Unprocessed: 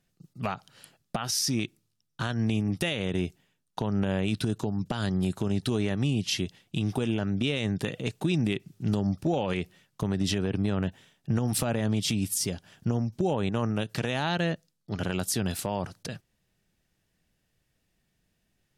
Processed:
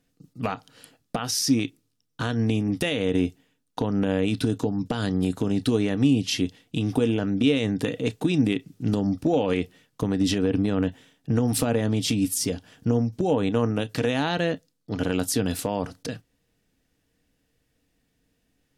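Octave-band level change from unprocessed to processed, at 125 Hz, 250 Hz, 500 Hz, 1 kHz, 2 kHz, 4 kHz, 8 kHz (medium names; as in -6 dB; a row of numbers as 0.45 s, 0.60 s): +1.5 dB, +5.5 dB, +6.0 dB, +2.5 dB, +2.0 dB, +2.0 dB, +2.0 dB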